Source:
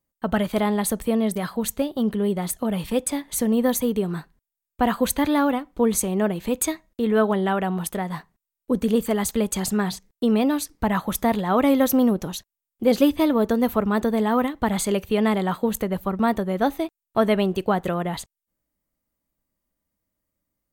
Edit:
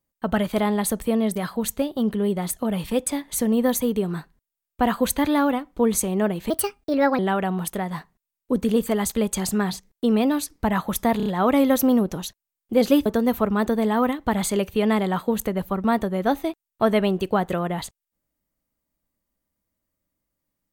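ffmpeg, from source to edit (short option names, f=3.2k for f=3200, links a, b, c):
-filter_complex "[0:a]asplit=7[a][b][c][d][e][f][g];[a]atrim=end=6.504[h];[b]atrim=start=6.5:end=7.38,asetpts=PTS-STARTPTS,asetrate=56448,aresample=44100[i];[c]atrim=start=7.376:end=11.392[j];[d]atrim=start=11.358:end=11.392[k];[e]atrim=start=11.358:end=11.392[l];[f]atrim=start=11.358:end=13.162[m];[g]atrim=start=13.408[n];[h][i]acrossfade=d=0.004:c1=hsin:c2=hsin[o];[o][j]acrossfade=d=0.004:c1=hsin:c2=hsin[p];[p][k]acrossfade=d=0.004:c1=hsin:c2=hsin[q];[q][l]acrossfade=d=0.004:c1=hsin:c2=hsin[r];[r][m]acrossfade=d=0.004:c1=hsin:c2=hsin[s];[s][n]acrossfade=d=0.004:c1=hsin:c2=hsin"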